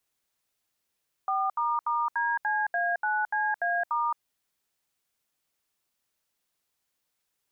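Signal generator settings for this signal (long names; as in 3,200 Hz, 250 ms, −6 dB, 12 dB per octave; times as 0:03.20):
touch tones "4**DCA9CA*", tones 219 ms, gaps 73 ms, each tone −27 dBFS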